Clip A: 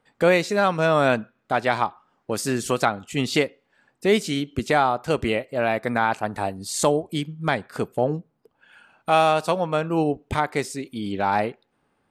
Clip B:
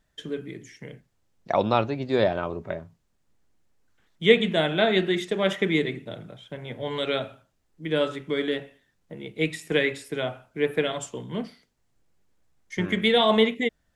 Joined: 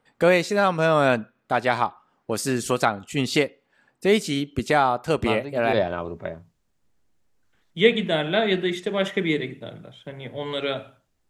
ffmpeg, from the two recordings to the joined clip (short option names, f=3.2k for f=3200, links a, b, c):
-filter_complex "[1:a]asplit=2[a][b];[0:a]apad=whole_dur=11.29,atrim=end=11.29,atrim=end=5.732[c];[b]atrim=start=2.178:end=7.74[d];[a]atrim=start=1.67:end=2.18,asetpts=PTS-STARTPTS,volume=-6dB,afade=t=in:d=0.004:c=hsin,afade=t=out:st=0.506:d=0.004:c=hsin,adelay=5220[e];[c][d]acrossfade=d=0.004:c1=hsin:c2=hsin[f];[f][e]amix=inputs=2:normalize=0"